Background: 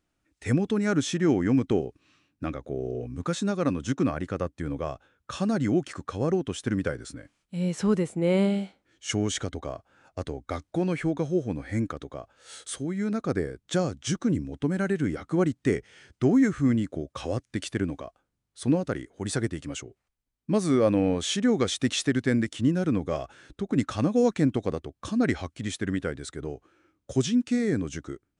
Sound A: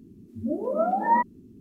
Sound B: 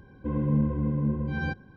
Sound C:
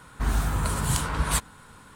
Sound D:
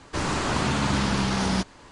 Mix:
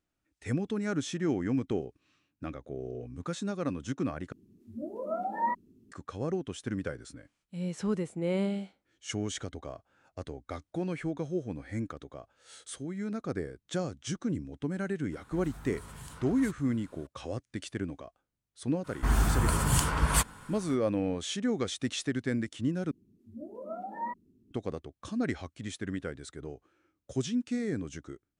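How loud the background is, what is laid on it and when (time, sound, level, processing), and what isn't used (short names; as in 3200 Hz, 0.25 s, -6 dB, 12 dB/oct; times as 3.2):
background -7 dB
4.32 replace with A -8 dB + low shelf 370 Hz -4 dB
15.12 add C -10.5 dB + compressor 2.5:1, threshold -37 dBFS
18.83 add C -0.5 dB, fades 0.05 s + notch 3900 Hz, Q 10
22.91 replace with A -15 dB
not used: B, D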